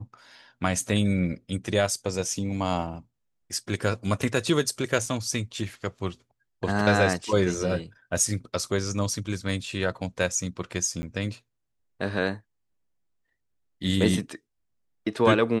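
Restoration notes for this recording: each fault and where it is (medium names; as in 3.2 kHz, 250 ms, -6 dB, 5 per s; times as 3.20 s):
5.06 s: dropout 3.2 ms
11.02–11.03 s: dropout 10 ms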